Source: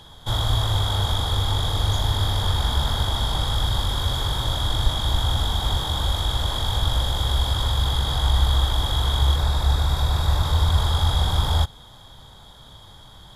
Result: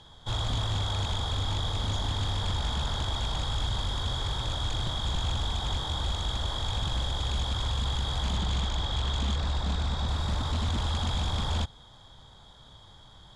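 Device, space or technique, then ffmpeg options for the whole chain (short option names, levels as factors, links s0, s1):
synthesiser wavefolder: -filter_complex "[0:a]asettb=1/sr,asplit=3[s0][s1][s2];[s0]atrim=end=8.374[s3];[s1]atrim=start=8.37:end=10.08,asetpts=PTS-STARTPTS,afade=t=in:d=0.004:c=qsin,afade=t=out:st=1.706:d=0.004:c=qsin,lowpass=7400[s4];[s2]atrim=start=10.076[s5];[s3][s4]acrossfade=d=0.004:c1=hsin:c2=qsin[s6];[s6][s5]acrossfade=d=0.004:c1=qsin:c2=hsin,aeval=exprs='0.15*(abs(mod(val(0)/0.15+3,4)-2)-1)':c=same,lowpass=f=8400:w=0.5412,lowpass=f=8400:w=1.3066,volume=0.473"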